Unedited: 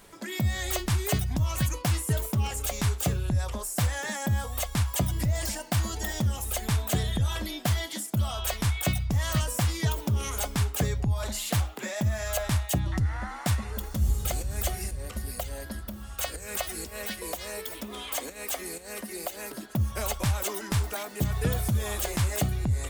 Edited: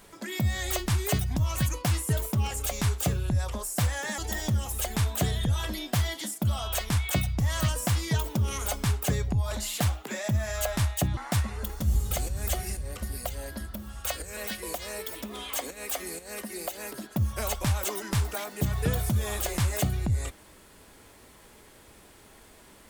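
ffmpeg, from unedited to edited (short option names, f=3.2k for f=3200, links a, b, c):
-filter_complex "[0:a]asplit=4[a][b][c][d];[a]atrim=end=4.182[e];[b]atrim=start=5.898:end=12.892[f];[c]atrim=start=13.308:end=16.512[g];[d]atrim=start=16.958[h];[e][f]acrossfade=d=0.004:c1=hsin:c2=hsin[i];[i][g]acrossfade=d=0.004:c1=hsin:c2=hsin[j];[j][h]acrossfade=d=0.004:c1=hsin:c2=hsin"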